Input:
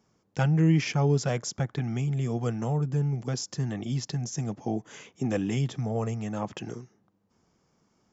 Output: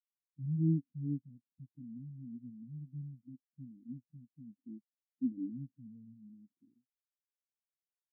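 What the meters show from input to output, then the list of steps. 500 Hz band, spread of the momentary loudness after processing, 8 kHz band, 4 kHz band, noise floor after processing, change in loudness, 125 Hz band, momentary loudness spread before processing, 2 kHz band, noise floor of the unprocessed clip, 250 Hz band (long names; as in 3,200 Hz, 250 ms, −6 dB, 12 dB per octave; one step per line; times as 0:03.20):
below −20 dB, 22 LU, can't be measured, below −40 dB, below −85 dBFS, −11.0 dB, −14.0 dB, 11 LU, below −40 dB, −70 dBFS, −10.0 dB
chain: running median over 41 samples
formant resonators in series i
every bin expanded away from the loudest bin 2.5 to 1
level +1 dB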